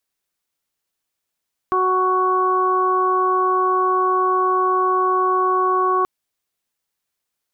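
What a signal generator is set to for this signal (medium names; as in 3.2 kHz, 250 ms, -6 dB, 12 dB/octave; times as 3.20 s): steady additive tone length 4.33 s, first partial 371 Hz, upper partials -6/4/-14.5 dB, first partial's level -20.5 dB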